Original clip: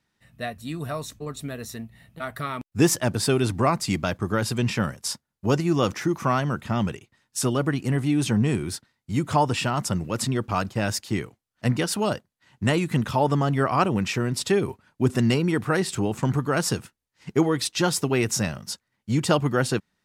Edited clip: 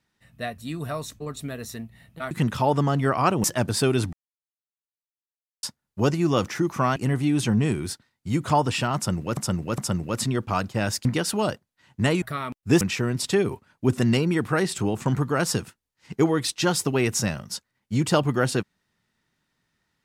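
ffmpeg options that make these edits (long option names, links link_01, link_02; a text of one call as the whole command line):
ffmpeg -i in.wav -filter_complex "[0:a]asplit=11[link_01][link_02][link_03][link_04][link_05][link_06][link_07][link_08][link_09][link_10][link_11];[link_01]atrim=end=2.312[link_12];[link_02]atrim=start=12.848:end=13.982[link_13];[link_03]atrim=start=2.898:end=3.59,asetpts=PTS-STARTPTS,afade=type=out:start_time=0.688:duration=0.004:curve=hsin[link_14];[link_04]atrim=start=3.59:end=5.09,asetpts=PTS-STARTPTS,volume=0[link_15];[link_05]atrim=start=5.09:end=6.422,asetpts=PTS-STARTPTS,afade=type=in:duration=0.004:curve=hsin[link_16];[link_06]atrim=start=7.788:end=10.202[link_17];[link_07]atrim=start=9.788:end=10.202[link_18];[link_08]atrim=start=9.788:end=11.062[link_19];[link_09]atrim=start=11.678:end=12.852[link_20];[link_10]atrim=start=2.308:end=2.902[link_21];[link_11]atrim=start=13.978[link_22];[link_12][link_13]acrossfade=duration=0.004:curve1=hsin:curve2=hsin[link_23];[link_14][link_15][link_16]concat=n=3:v=0:a=1[link_24];[link_23][link_24]acrossfade=duration=0.004:curve1=hsin:curve2=hsin[link_25];[link_25][link_17]acrossfade=duration=0.004:curve1=hsin:curve2=hsin[link_26];[link_26][link_18]acrossfade=duration=0.004:curve1=hsin:curve2=hsin[link_27];[link_27][link_19]acrossfade=duration=0.004:curve1=hsin:curve2=hsin[link_28];[link_28][link_20]acrossfade=duration=0.004:curve1=hsin:curve2=hsin[link_29];[link_29][link_21]acrossfade=duration=0.004:curve1=hsin:curve2=hsin[link_30];[link_30][link_22]acrossfade=duration=0.004:curve1=hsin:curve2=hsin" out.wav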